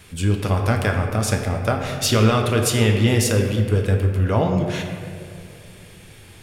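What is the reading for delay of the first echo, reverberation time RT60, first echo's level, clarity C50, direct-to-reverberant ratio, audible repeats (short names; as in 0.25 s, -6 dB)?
none, 2.5 s, none, 4.5 dB, 2.0 dB, none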